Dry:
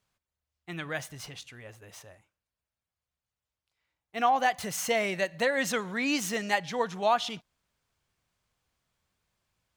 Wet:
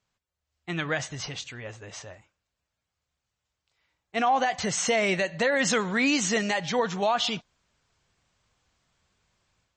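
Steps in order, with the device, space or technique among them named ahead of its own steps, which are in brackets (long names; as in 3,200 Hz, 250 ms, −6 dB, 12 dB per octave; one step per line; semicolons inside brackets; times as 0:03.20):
low-bitrate web radio (automatic gain control gain up to 8 dB; brickwall limiter −15 dBFS, peak gain reduction 10.5 dB; MP3 32 kbit/s 24,000 Hz)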